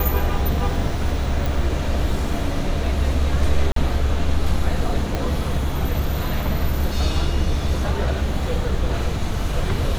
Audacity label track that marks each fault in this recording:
1.460000	1.460000	click
3.720000	3.760000	drop-out 43 ms
5.150000	5.150000	click −10 dBFS

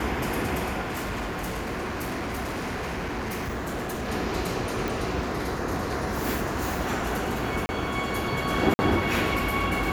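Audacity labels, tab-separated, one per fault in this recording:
0.810000	4.090000	clipping −27.5 dBFS
4.880000	4.880000	click
7.660000	7.690000	drop-out 30 ms
8.740000	8.790000	drop-out 50 ms

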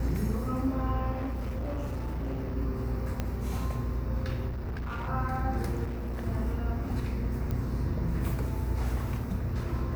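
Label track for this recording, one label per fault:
1.110000	2.570000	clipping −29.5 dBFS
3.200000	3.200000	click −17 dBFS
4.480000	5.090000	clipping −31.5 dBFS
5.840000	6.260000	clipping −31 dBFS
7.510000	7.510000	click −22 dBFS

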